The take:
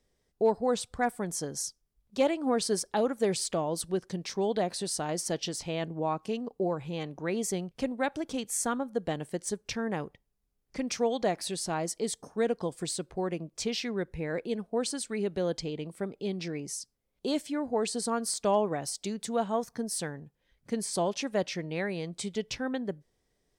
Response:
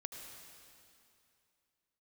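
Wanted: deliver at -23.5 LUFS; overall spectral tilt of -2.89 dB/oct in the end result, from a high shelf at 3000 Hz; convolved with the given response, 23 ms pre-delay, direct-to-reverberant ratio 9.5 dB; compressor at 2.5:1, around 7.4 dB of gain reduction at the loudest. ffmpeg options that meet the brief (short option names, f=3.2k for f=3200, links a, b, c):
-filter_complex "[0:a]highshelf=f=3k:g=8.5,acompressor=threshold=-31dB:ratio=2.5,asplit=2[a][b];[1:a]atrim=start_sample=2205,adelay=23[c];[b][c]afir=irnorm=-1:irlink=0,volume=-7dB[d];[a][d]amix=inputs=2:normalize=0,volume=9.5dB"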